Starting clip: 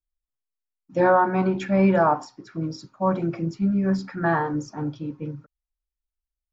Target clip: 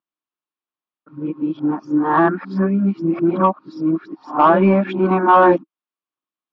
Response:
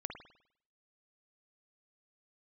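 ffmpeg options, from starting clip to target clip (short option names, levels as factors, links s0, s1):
-af "areverse,highpass=f=180:w=0.5412,highpass=f=180:w=1.3066,equalizer=f=320:t=q:w=4:g=8,equalizer=f=490:t=q:w=4:g=-4,equalizer=f=1100:t=q:w=4:g=8,equalizer=f=2000:t=q:w=4:g=-5,lowpass=f=3500:w=0.5412,lowpass=f=3500:w=1.3066,acontrast=42"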